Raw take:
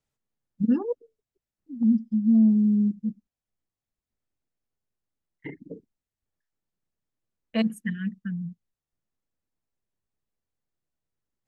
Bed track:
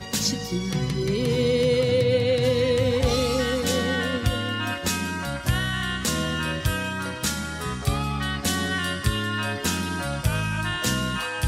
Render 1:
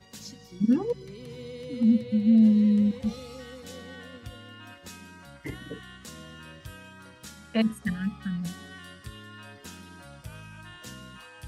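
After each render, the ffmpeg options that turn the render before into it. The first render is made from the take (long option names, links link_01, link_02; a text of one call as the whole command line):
ffmpeg -i in.wav -i bed.wav -filter_complex "[1:a]volume=-19dB[link_01];[0:a][link_01]amix=inputs=2:normalize=0" out.wav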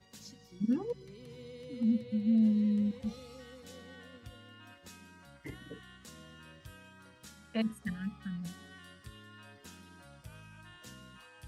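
ffmpeg -i in.wav -af "volume=-8dB" out.wav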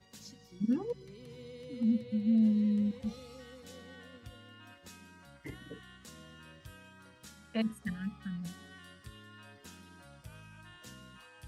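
ffmpeg -i in.wav -af anull out.wav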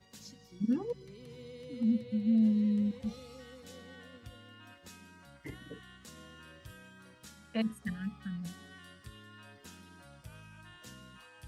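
ffmpeg -i in.wav -filter_complex "[0:a]asettb=1/sr,asplit=3[link_01][link_02][link_03];[link_01]atrim=end=6.124[link_04];[link_02]atrim=start=6.12:end=7.15,asetpts=PTS-STARTPTS,afade=type=in:duration=0.004:curve=qsin,afade=type=out:start_time=1.026:duration=0.004:curve=qsin,asplit=2[link_05][link_06];[link_06]adelay=48,volume=-9dB[link_07];[link_05][link_07]amix=inputs=2:normalize=0,atrim=end_sample=45423[link_08];[link_03]atrim=start=7.146[link_09];[link_04][link_08]acrossfade=duration=0.004:curve1=hsin:curve2=qsin[link_10];[link_10][link_09]acrossfade=duration=0.004:curve1=qsin:curve2=hsin" out.wav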